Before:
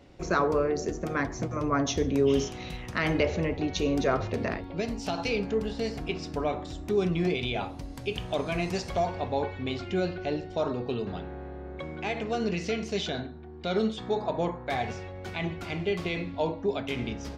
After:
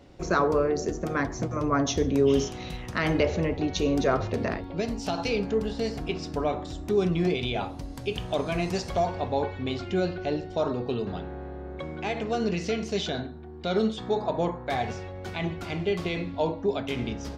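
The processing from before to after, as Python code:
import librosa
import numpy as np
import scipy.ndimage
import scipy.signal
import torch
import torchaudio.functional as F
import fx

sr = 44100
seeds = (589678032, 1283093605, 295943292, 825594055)

y = fx.peak_eq(x, sr, hz=2300.0, db=-3.0, octaves=0.72)
y = y * 10.0 ** (2.0 / 20.0)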